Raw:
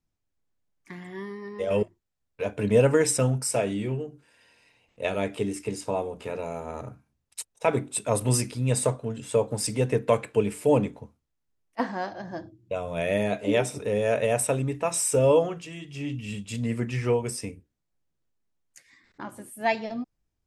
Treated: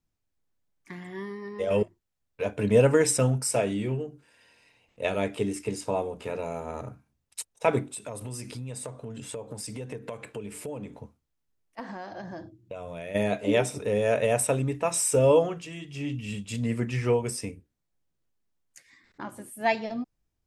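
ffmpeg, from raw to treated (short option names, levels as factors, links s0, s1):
-filter_complex "[0:a]asplit=3[s0][s1][s2];[s0]afade=t=out:st=7.89:d=0.02[s3];[s1]acompressor=threshold=0.02:ratio=6:attack=3.2:release=140:knee=1:detection=peak,afade=t=in:st=7.89:d=0.02,afade=t=out:st=13.14:d=0.02[s4];[s2]afade=t=in:st=13.14:d=0.02[s5];[s3][s4][s5]amix=inputs=3:normalize=0"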